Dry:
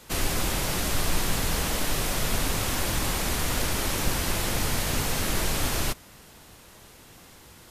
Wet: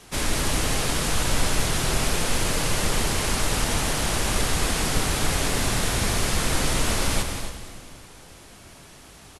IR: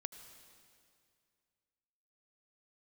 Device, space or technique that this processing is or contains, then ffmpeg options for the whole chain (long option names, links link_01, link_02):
slowed and reverbed: -filter_complex "[0:a]aecho=1:1:154.5|218.7:0.316|0.282,asetrate=36162,aresample=44100[link_01];[1:a]atrim=start_sample=2205[link_02];[link_01][link_02]afir=irnorm=-1:irlink=0,volume=5.5dB"